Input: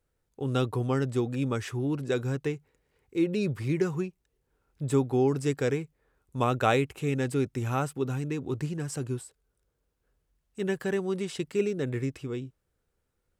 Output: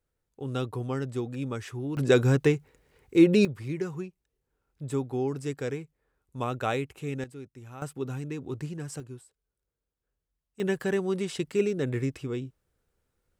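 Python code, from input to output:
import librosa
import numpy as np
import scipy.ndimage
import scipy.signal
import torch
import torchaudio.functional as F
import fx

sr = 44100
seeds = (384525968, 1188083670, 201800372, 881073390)

y = fx.gain(x, sr, db=fx.steps((0.0, -4.0), (1.97, 8.0), (3.45, -5.0), (7.24, -15.5), (7.82, -3.5), (9.0, -10.5), (10.6, 1.5)))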